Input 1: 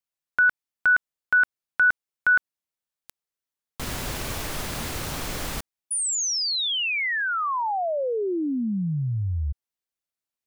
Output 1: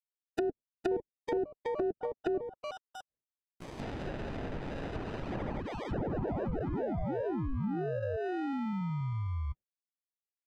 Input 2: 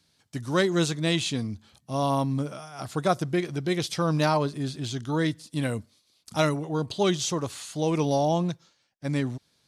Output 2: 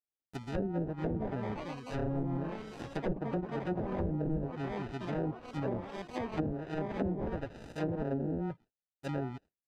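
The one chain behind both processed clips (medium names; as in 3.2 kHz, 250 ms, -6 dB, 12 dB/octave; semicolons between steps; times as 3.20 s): coarse spectral quantiser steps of 30 dB; gate with hold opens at -45 dBFS, closes at -52 dBFS, hold 52 ms, range -33 dB; sample-rate reducer 1.1 kHz, jitter 0%; ever faster or slower copies 606 ms, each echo +4 st, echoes 3, each echo -6 dB; low-pass that closes with the level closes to 370 Hz, closed at -19.5 dBFS; trim -7.5 dB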